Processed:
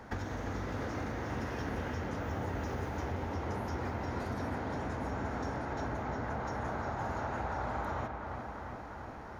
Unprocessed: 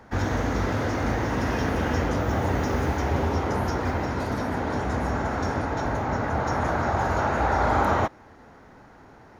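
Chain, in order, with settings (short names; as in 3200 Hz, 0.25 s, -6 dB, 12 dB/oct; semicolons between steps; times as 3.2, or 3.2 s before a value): compressor 10:1, threshold -35 dBFS, peak gain reduction 17.5 dB; on a send: dark delay 0.35 s, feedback 72%, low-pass 3400 Hz, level -6.5 dB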